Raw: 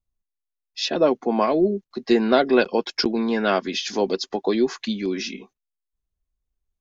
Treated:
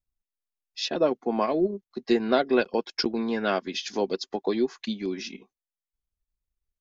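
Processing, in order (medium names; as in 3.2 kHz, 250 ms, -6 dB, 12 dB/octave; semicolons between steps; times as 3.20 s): transient shaper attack +1 dB, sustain -7 dB; trim -5 dB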